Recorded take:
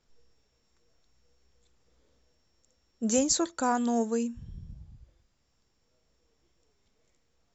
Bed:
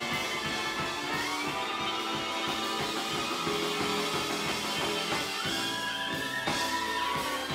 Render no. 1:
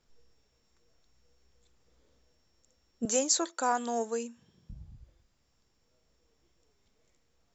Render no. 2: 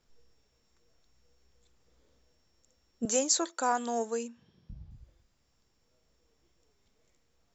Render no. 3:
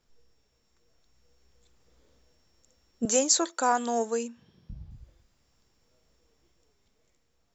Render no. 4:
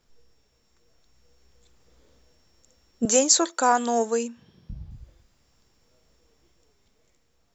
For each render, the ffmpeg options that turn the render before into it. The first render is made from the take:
-filter_complex "[0:a]asettb=1/sr,asplit=3[a][b][c];[a]atrim=end=3.054[d];[b]atrim=start=3.05:end=4.7,asetpts=PTS-STARTPTS,afade=t=in:d=0.004:c=qsin,afade=t=out:st=1.646:d=0.004:c=qsin,highpass=420[e];[c]atrim=start=4.696[f];[d][e]acrossfade=d=0.004:c1=hsin:c2=qsin[g];[g][f]acrossfade=d=0.004:c1=qsin:c2=hsin"
-filter_complex "[0:a]asettb=1/sr,asplit=3[a][b][c];[a]atrim=end=4.284[d];[b]atrim=start=4.28:end=4.91,asetpts=PTS-STARTPTS,afade=t=in:d=0.004:c=qsin,afade=t=out:st=0.626:d=0.004:c=qsin,lowpass=f=5.5k:w=0.5412,lowpass=f=5.5k:w=1.3066[e];[c]atrim=start=4.906[f];[d][e]acrossfade=d=0.004:c1=hsin:c2=qsin[g];[g][f]acrossfade=d=0.004:c1=qsin:c2=hsin"
-af "dynaudnorm=f=360:g=7:m=4dB"
-af "volume=4.5dB"

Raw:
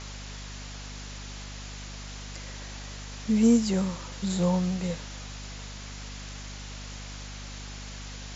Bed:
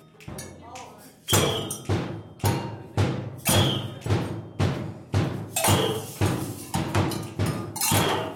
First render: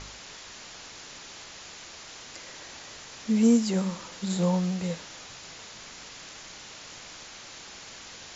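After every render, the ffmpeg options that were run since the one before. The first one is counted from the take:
-af "bandreject=f=50:t=h:w=4,bandreject=f=100:t=h:w=4,bandreject=f=150:t=h:w=4,bandreject=f=200:t=h:w=4,bandreject=f=250:t=h:w=4"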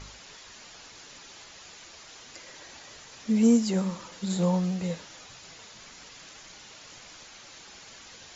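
-af "afftdn=nr=6:nf=-45"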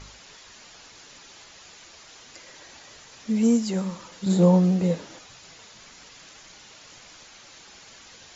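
-filter_complex "[0:a]asettb=1/sr,asplit=3[a][b][c];[a]atrim=end=4.264[d];[b]atrim=start=4.26:end=5.19,asetpts=PTS-STARTPTS,afade=t=in:d=0.004:c=qsin,afade=t=out:st=0.926:d=0.004:c=qsin,equalizer=f=320:w=0.52:g=11.5[e];[c]atrim=start=5.186[f];[d][e]acrossfade=d=0.004:c1=hsin:c2=qsin[g];[g][f]acrossfade=d=0.004:c1=qsin:c2=hsin"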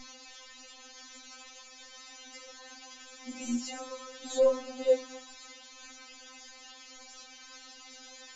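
-af "asoftclip=type=tanh:threshold=-8.5dB,afftfilt=real='re*3.46*eq(mod(b,12),0)':imag='im*3.46*eq(mod(b,12),0)':win_size=2048:overlap=0.75"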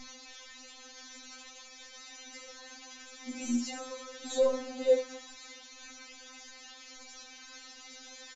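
-filter_complex "[0:a]asplit=2[a][b];[b]adelay=16,volume=-11.5dB[c];[a][c]amix=inputs=2:normalize=0,aecho=1:1:71:0.224"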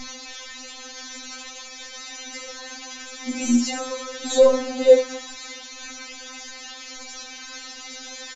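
-af "volume=12dB"

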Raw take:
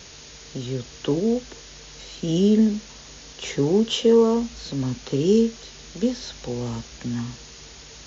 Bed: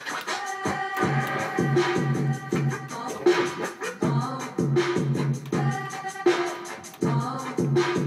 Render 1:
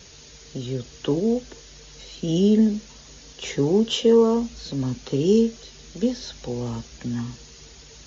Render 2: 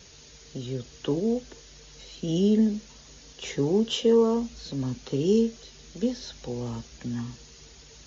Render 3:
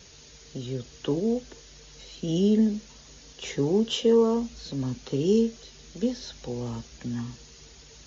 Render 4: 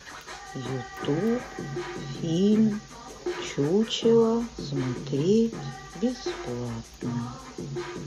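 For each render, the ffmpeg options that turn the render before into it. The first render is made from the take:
-af "afftdn=nr=6:nf=-44"
-af "volume=-4dB"
-af anull
-filter_complex "[1:a]volume=-11.5dB[a];[0:a][a]amix=inputs=2:normalize=0"

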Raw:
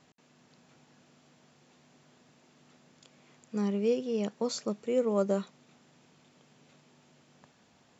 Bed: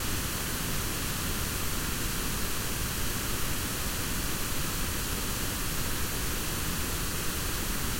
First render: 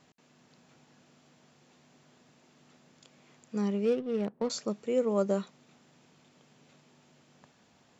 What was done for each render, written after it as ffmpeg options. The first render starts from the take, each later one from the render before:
-filter_complex "[0:a]asettb=1/sr,asplit=3[a][b][c];[a]atrim=end=3.854[d];[b]atrim=start=3.85:end=4.5,asetpts=PTS-STARTPTS,afade=t=in:d=0.004:c=qsin,afade=t=out:st=0.646:d=0.004:c=qsin,adynamicsmooth=sensitivity=6.5:basefreq=630[e];[c]atrim=start=4.496[f];[d][e]acrossfade=d=0.004:c1=hsin:c2=qsin[g];[g][f]acrossfade=d=0.004:c1=qsin:c2=hsin"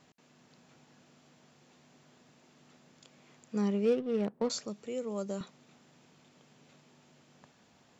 -filter_complex "[0:a]asettb=1/sr,asplit=3[a][b][c];[a]atrim=end=4.594[d];[b]atrim=start=4.59:end=5.41,asetpts=PTS-STARTPTS,afade=t=in:d=0.004:c=qsin,afade=t=out:st=0.816:d=0.004:c=qsin,acrossover=split=130|3000[e][f][g];[f]acompressor=threshold=-50dB:ratio=1.5:attack=3.2:release=140:knee=2.83:detection=peak[h];[e][h][g]amix=inputs=3:normalize=0[i];[c]atrim=start=5.406[j];[d][i]acrossfade=d=0.004:c1=hsin:c2=qsin[k];[k][j]acrossfade=d=0.004:c1=qsin:c2=hsin"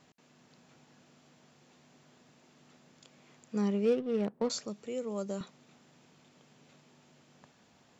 -af anull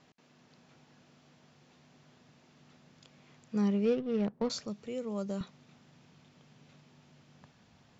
-af "lowpass=f=6.3k:w=0.5412,lowpass=f=6.3k:w=1.3066,asubboost=boost=2.5:cutoff=190"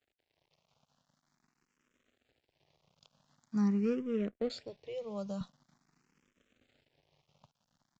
-filter_complex "[0:a]aresample=16000,aeval=exprs='sgn(val(0))*max(abs(val(0))-0.00112,0)':c=same,aresample=44100,asplit=2[a][b];[b]afreqshift=0.45[c];[a][c]amix=inputs=2:normalize=1"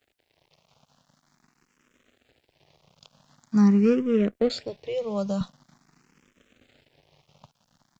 -af "volume=11.5dB"

